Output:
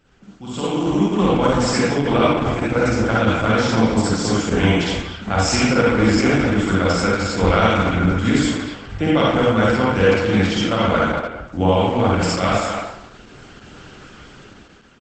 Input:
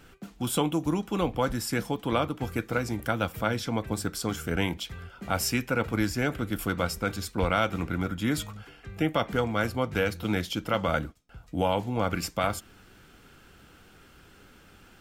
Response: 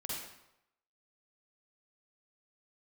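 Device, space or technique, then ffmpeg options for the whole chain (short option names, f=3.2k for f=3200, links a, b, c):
speakerphone in a meeting room: -filter_complex "[1:a]atrim=start_sample=2205[a];[0:a][a]afir=irnorm=-1:irlink=0,asplit=2[b][c];[c]adelay=230,highpass=300,lowpass=3.4k,asoftclip=type=hard:threshold=-21dB,volume=-7dB[d];[b][d]amix=inputs=2:normalize=0,dynaudnorm=f=150:g=11:m=15dB,volume=-1dB" -ar 48000 -c:a libopus -b:a 12k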